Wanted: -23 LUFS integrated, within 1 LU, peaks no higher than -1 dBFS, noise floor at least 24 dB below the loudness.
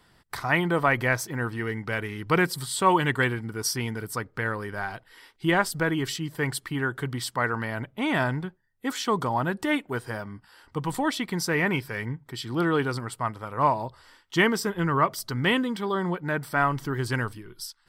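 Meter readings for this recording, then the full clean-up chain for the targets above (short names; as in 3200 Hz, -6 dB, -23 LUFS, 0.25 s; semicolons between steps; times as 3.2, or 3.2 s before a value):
loudness -27.0 LUFS; peak -7.5 dBFS; loudness target -23.0 LUFS
-> gain +4 dB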